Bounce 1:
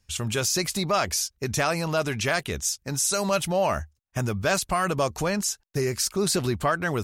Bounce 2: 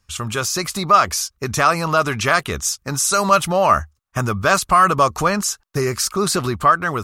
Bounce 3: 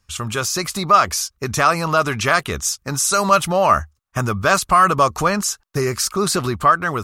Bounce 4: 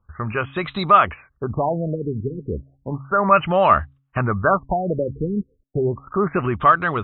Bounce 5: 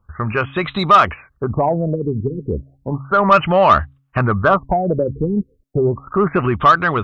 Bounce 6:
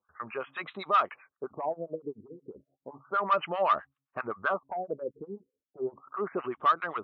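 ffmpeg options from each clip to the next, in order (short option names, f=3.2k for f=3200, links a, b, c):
-af "equalizer=f=1.2k:t=o:w=0.53:g=12.5,dynaudnorm=f=190:g=9:m=4dB,volume=2dB"
-af anull
-af "bandreject=f=136:t=h:w=4,bandreject=f=272:t=h:w=4,afftfilt=real='re*lt(b*sr/1024,480*pow(4100/480,0.5+0.5*sin(2*PI*0.33*pts/sr)))':imag='im*lt(b*sr/1024,480*pow(4100/480,0.5+0.5*sin(2*PI*0.33*pts/sr)))':win_size=1024:overlap=0.75"
-af "acontrast=49,volume=-1dB"
-filter_complex "[0:a]acrossover=split=870[a][b];[a]aeval=exprs='val(0)*(1-1/2+1/2*cos(2*PI*7.7*n/s))':c=same[c];[b]aeval=exprs='val(0)*(1-1/2-1/2*cos(2*PI*7.7*n/s))':c=same[d];[c][d]amix=inputs=2:normalize=0,highpass=410,lowpass=3.2k,volume=-9dB"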